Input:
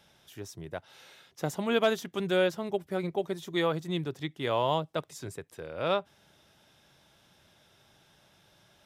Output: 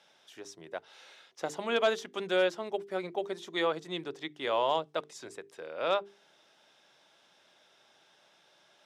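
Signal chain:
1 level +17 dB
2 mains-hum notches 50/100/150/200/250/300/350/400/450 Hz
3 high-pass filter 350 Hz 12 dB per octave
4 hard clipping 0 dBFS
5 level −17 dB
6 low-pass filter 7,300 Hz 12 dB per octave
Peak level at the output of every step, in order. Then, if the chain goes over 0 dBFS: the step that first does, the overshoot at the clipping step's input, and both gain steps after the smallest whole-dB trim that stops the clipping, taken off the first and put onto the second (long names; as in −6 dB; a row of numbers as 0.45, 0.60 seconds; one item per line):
+3.0, +2.5, +3.5, 0.0, −17.0, −16.5 dBFS
step 1, 3.5 dB
step 1 +13 dB, step 5 −13 dB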